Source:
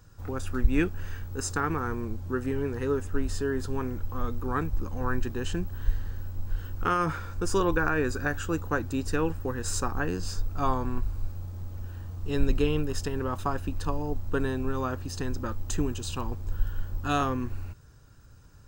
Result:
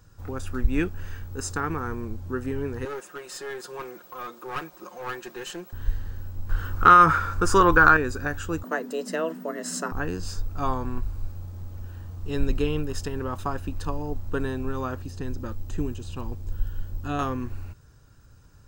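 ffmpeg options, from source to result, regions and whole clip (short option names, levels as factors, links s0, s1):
-filter_complex "[0:a]asettb=1/sr,asplit=3[s0][s1][s2];[s0]atrim=end=2.854[s3];[s1]atrim=start=2.85:end=5.73,asetpts=PTS-STARTPTS,afade=t=in:d=0.004:c=qsin,afade=t=out:st=2.876:d=0.004:c=qsin,highpass=480,aecho=1:1:5.6:0.92,atrim=end_sample=127008,aeval=exprs='clip(val(0),-1,0.0178)':c=same[s4];[s2]atrim=start=5.726[s5];[s3][s4]acrossfade=d=0.004:c1=hsin:c2=qsin[s6];[s6][s5]acrossfade=d=0.004:c1=qsin:c2=hsin,asettb=1/sr,asplit=3[s7][s8][s9];[s7]atrim=end=6.494[s10];[s8]atrim=start=6.49:end=7.97,asetpts=PTS-STARTPTS,afade=t=in:d=0.004:c=qsin,afade=t=out:st=1.476:d=0.004:c=qsin,equalizer=f=1300:w=1.7:g=11,acontrast=23[s11];[s9]atrim=start=7.966[s12];[s10][s11]acrossfade=d=0.004:c1=hsin:c2=qsin[s13];[s13][s12]acrossfade=d=0.004:c1=qsin:c2=hsin,asettb=1/sr,asplit=3[s14][s15][s16];[s14]atrim=end=8.634[s17];[s15]atrim=start=8.63:end=9.92,asetpts=PTS-STARTPTS,afade=t=in:d=0.004:c=qsin,afade=t=out:st=1.286:d=0.004:c=qsin,highpass=f=72:p=1,afreqshift=160[s18];[s16]atrim=start=9.916[s19];[s17][s18]acrossfade=d=0.004:c1=hsin:c2=qsin[s20];[s20][s19]acrossfade=d=0.004:c1=qsin:c2=hsin,asettb=1/sr,asplit=3[s21][s22][s23];[s21]atrim=end=15.024[s24];[s22]atrim=start=15.02:end=17.19,asetpts=PTS-STARTPTS,afade=t=in:d=0.004:c=qsin,afade=t=out:st=2.166:d=0.004:c=qsin,equalizer=f=1200:t=o:w=1.8:g=-5.5,acrossover=split=2500[s25][s26];[s26]acompressor=threshold=0.00398:ratio=4:attack=1:release=60[s27];[s25][s27]amix=inputs=2:normalize=0[s28];[s23]atrim=start=17.186[s29];[s24][s28]acrossfade=d=0.004:c1=hsin:c2=qsin[s30];[s30][s29]acrossfade=d=0.004:c1=qsin:c2=hsin"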